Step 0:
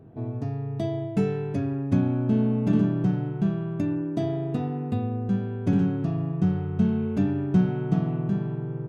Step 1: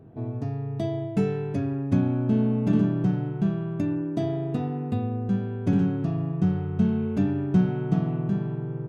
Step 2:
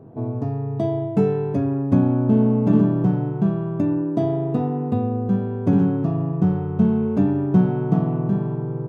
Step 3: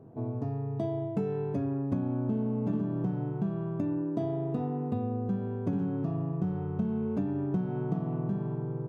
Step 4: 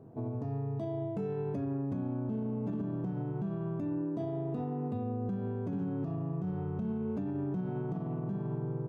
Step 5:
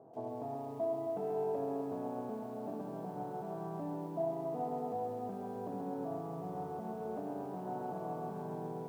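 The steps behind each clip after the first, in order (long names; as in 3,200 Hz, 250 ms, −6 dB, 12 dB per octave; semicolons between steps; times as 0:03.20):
no processing that can be heard
graphic EQ with 10 bands 125 Hz +7 dB, 250 Hz +7 dB, 500 Hz +9 dB, 1,000 Hz +11 dB; level −4 dB
downward compressor, threshold −19 dBFS, peak gain reduction 8.5 dB; level −7.5 dB
brickwall limiter −26.5 dBFS, peak gain reduction 8 dB; level −1 dB
resonant band-pass 730 Hz, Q 2.4; high-frequency loss of the air 120 metres; feedback echo at a low word length 134 ms, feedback 80%, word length 12 bits, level −6 dB; level +7 dB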